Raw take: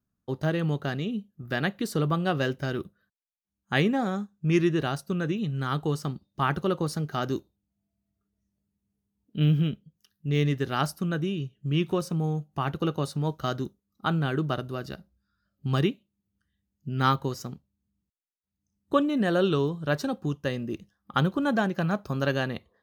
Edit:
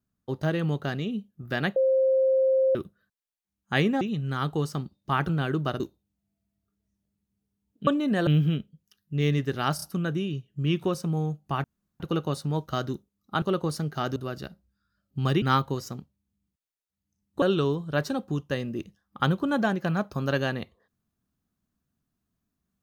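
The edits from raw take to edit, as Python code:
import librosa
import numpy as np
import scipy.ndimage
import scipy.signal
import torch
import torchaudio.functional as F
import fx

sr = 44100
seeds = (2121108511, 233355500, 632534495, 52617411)

y = fx.edit(x, sr, fx.bleep(start_s=1.76, length_s=0.99, hz=528.0, db=-18.5),
    fx.cut(start_s=4.01, length_s=1.3),
    fx.swap(start_s=6.59, length_s=0.74, other_s=14.13, other_length_s=0.51),
    fx.stutter(start_s=10.89, slice_s=0.03, count=3),
    fx.insert_room_tone(at_s=12.71, length_s=0.36),
    fx.cut(start_s=15.9, length_s=1.06),
    fx.move(start_s=18.96, length_s=0.4, to_s=9.4), tone=tone)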